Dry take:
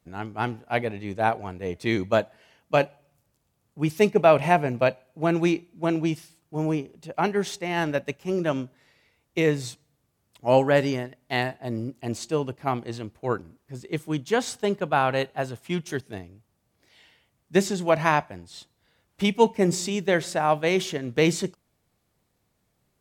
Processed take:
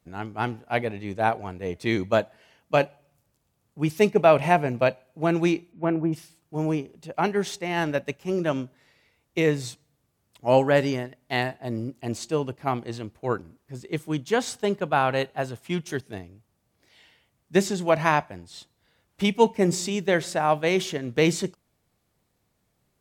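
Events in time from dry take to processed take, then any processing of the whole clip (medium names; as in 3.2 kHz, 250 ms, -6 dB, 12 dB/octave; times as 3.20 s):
5.71–6.12 s: low-pass 3.4 kHz -> 1.3 kHz 24 dB/octave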